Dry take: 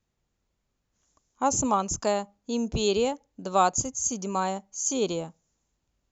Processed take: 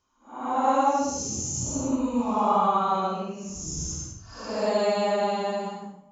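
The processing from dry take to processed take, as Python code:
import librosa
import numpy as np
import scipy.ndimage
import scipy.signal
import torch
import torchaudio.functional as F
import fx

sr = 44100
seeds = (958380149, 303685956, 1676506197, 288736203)

y = scipy.signal.sosfilt(scipy.signal.butter(4, 6000.0, 'lowpass', fs=sr, output='sos'), x)
y = fx.hum_notches(y, sr, base_hz=50, count=2)
y = fx.paulstretch(y, sr, seeds[0], factor=6.5, window_s=0.1, from_s=1.34)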